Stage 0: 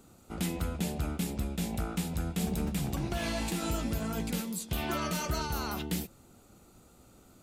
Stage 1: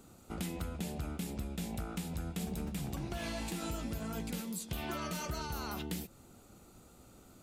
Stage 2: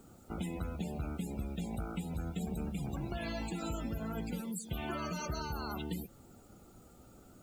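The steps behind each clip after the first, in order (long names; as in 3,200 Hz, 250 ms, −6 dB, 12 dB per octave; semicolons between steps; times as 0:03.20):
downward compressor 2.5 to 1, threshold −38 dBFS, peak gain reduction 8 dB
spectral peaks only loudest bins 64; background noise white −71 dBFS; level +1 dB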